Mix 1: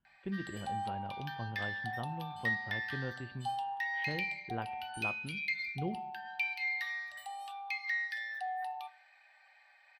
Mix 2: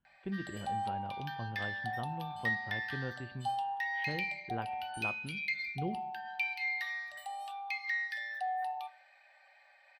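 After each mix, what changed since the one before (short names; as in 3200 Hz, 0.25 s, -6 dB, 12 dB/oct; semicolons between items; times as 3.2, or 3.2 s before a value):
background: remove HPF 740 Hz 24 dB/oct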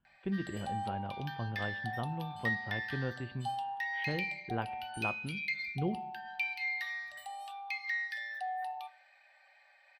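speech +3.5 dB; background: add bell 620 Hz -2.5 dB 2 oct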